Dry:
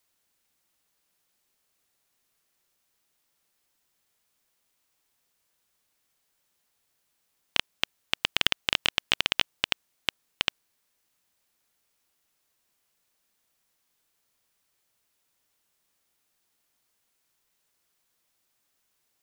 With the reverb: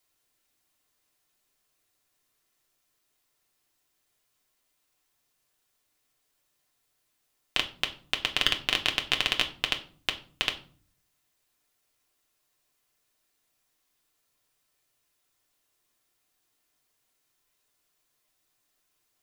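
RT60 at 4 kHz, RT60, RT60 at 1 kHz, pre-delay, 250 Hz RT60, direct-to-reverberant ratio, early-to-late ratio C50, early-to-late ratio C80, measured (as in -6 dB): 0.30 s, 0.45 s, 0.45 s, 3 ms, 0.70 s, 2.5 dB, 14.5 dB, 18.5 dB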